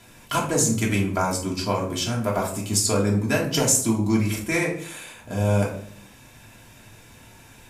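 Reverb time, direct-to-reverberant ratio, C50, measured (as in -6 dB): 0.60 s, -4.0 dB, 6.5 dB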